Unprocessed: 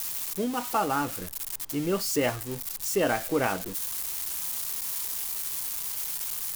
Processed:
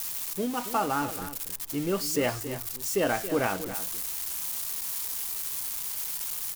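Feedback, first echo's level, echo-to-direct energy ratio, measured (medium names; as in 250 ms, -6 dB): no regular repeats, -12.0 dB, -12.0 dB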